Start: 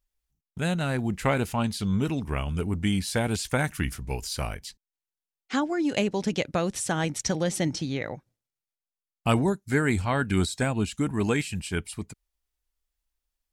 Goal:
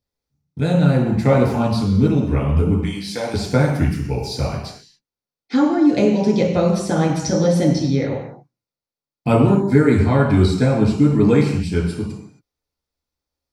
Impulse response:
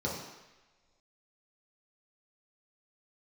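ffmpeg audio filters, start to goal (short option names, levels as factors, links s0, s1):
-filter_complex "[0:a]asettb=1/sr,asplit=3[s0][s1][s2];[s0]atrim=end=2.834[s3];[s1]atrim=start=2.83:end=3.34,asetpts=PTS-STARTPTS,afade=t=in:d=0.004:c=qsin,afade=t=out:st=0.506:d=0.004:c=qsin,highpass=f=990:p=1[s4];[s2]atrim=start=3.336[s5];[s3][s4]acrossfade=d=0.004:c1=hsin:c2=qsin[s6];[s6][s5]acrossfade=d=0.004:c1=qsin:c2=hsin[s7];[1:a]atrim=start_sample=2205,afade=t=out:st=0.33:d=0.01,atrim=end_sample=14994[s8];[s7][s8]afir=irnorm=-1:irlink=0,volume=0.891"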